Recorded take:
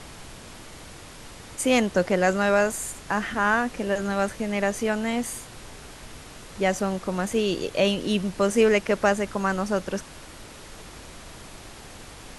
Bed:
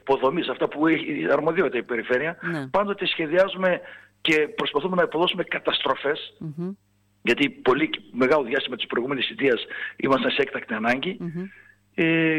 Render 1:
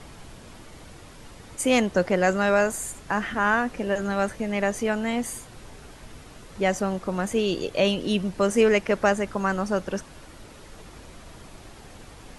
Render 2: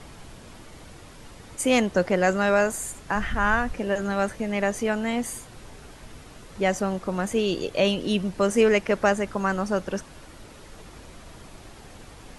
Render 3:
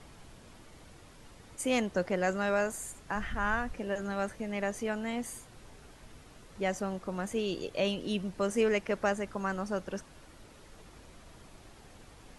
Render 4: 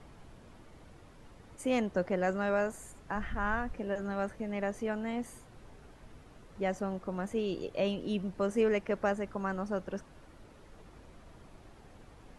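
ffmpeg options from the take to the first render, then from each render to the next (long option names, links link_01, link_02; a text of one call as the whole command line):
ffmpeg -i in.wav -af "afftdn=noise_reduction=6:noise_floor=-44" out.wav
ffmpeg -i in.wav -filter_complex "[0:a]asplit=3[link_01][link_02][link_03];[link_01]afade=type=out:start_time=3.14:duration=0.02[link_04];[link_02]asubboost=boost=9:cutoff=100,afade=type=in:start_time=3.14:duration=0.02,afade=type=out:start_time=3.73:duration=0.02[link_05];[link_03]afade=type=in:start_time=3.73:duration=0.02[link_06];[link_04][link_05][link_06]amix=inputs=3:normalize=0" out.wav
ffmpeg -i in.wav -af "volume=-8.5dB" out.wav
ffmpeg -i in.wav -af "highshelf=frequency=2500:gain=-10" out.wav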